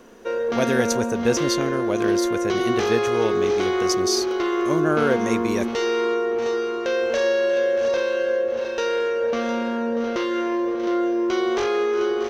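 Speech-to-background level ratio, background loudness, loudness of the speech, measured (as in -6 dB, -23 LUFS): -2.5 dB, -23.0 LUFS, -25.5 LUFS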